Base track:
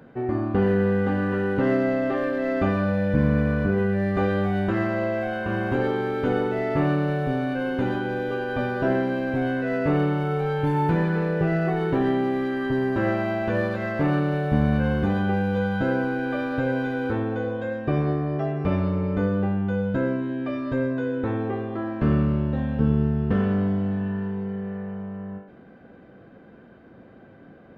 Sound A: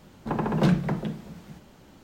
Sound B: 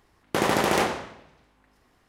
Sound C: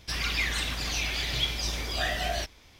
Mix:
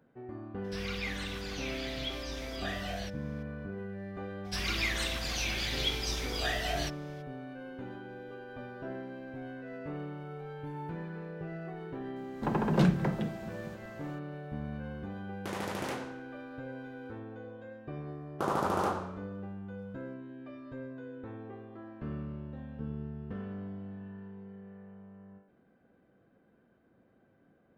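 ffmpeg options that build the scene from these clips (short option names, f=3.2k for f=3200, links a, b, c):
-filter_complex "[3:a]asplit=2[a][b];[2:a]asplit=2[c][d];[0:a]volume=-18dB[e];[a]acrossover=split=4400[f][g];[g]acompressor=threshold=-42dB:ratio=4:attack=1:release=60[h];[f][h]amix=inputs=2:normalize=0[i];[1:a]dynaudnorm=f=140:g=3:m=7.5dB[j];[d]highshelf=f=1.6k:t=q:w=3:g=-7[k];[i]atrim=end=2.79,asetpts=PTS-STARTPTS,volume=-9dB,afade=t=in:d=0.004:c=hsin,afade=t=out:st=2.786:d=0.004:c=hsin,adelay=640[l];[b]atrim=end=2.79,asetpts=PTS-STARTPTS,volume=-3.5dB,afade=t=in:d=0.02,afade=t=out:st=2.77:d=0.02,adelay=4440[m];[j]atrim=end=2.03,asetpts=PTS-STARTPTS,volume=-10dB,afade=t=in:d=0.004:c=hsin,afade=t=out:st=2.026:d=0.004:c=hsin,adelay=12160[n];[c]atrim=end=2.08,asetpts=PTS-STARTPTS,volume=-15dB,afade=t=in:d=0.004:c=hsin,afade=t=out:st=2.076:d=0.004:c=hsin,adelay=15110[o];[k]atrim=end=2.08,asetpts=PTS-STARTPTS,volume=-9dB,afade=t=in:d=0.004:c=hsin,afade=t=out:st=2.076:d=0.004:c=hsin,adelay=18060[p];[e][l][m][n][o][p]amix=inputs=6:normalize=0"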